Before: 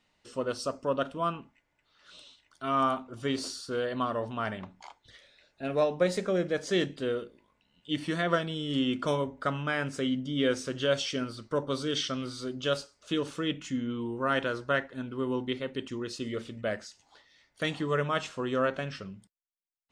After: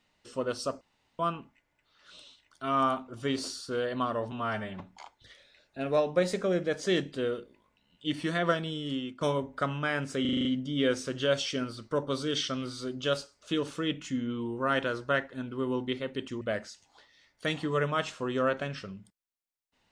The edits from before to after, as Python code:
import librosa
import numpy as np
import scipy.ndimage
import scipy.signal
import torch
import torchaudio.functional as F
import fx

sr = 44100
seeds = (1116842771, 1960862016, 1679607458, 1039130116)

y = fx.edit(x, sr, fx.room_tone_fill(start_s=0.81, length_s=0.38),
    fx.stretch_span(start_s=4.32, length_s=0.32, factor=1.5),
    fx.fade_out_to(start_s=8.52, length_s=0.53, floor_db=-18.0),
    fx.stutter(start_s=10.05, slice_s=0.04, count=7),
    fx.cut(start_s=16.01, length_s=0.57), tone=tone)